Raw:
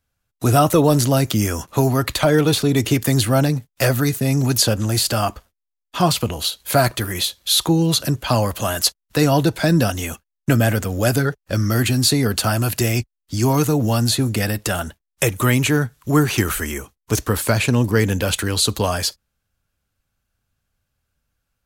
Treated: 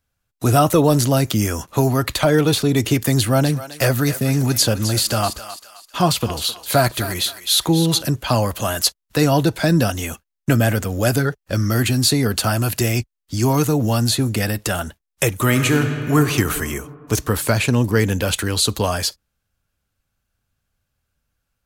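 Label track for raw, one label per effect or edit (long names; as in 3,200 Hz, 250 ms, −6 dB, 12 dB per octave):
3.150000	8.020000	feedback echo with a high-pass in the loop 261 ms, feedback 41%, high-pass 930 Hz, level −10 dB
15.410000	16.170000	thrown reverb, RT60 2.6 s, DRR 5 dB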